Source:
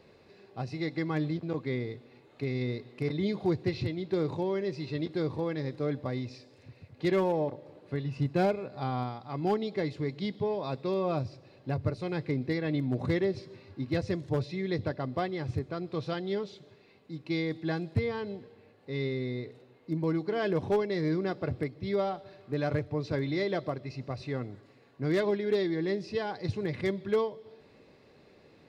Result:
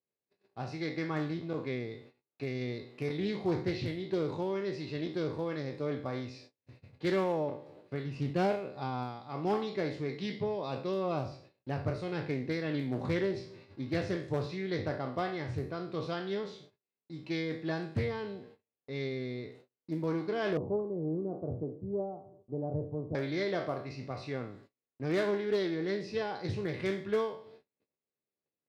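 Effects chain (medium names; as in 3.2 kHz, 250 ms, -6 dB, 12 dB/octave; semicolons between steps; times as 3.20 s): spectral sustain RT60 0.48 s; high-pass 110 Hz 6 dB/octave; gate -51 dBFS, range -37 dB; 20.57–23.15 s: Bessel low-pass 510 Hz, order 8; loudspeaker Doppler distortion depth 0.33 ms; trim -3 dB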